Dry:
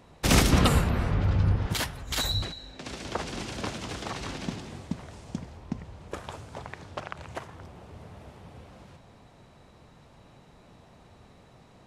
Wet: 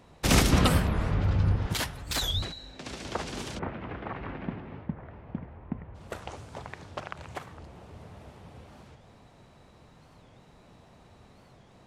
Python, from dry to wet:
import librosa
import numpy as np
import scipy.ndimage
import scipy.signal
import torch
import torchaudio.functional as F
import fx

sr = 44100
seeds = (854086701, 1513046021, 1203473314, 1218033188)

y = fx.lowpass(x, sr, hz=2200.0, slope=24, at=(3.59, 5.94), fade=0.02)
y = fx.record_warp(y, sr, rpm=45.0, depth_cents=250.0)
y = y * 10.0 ** (-1.0 / 20.0)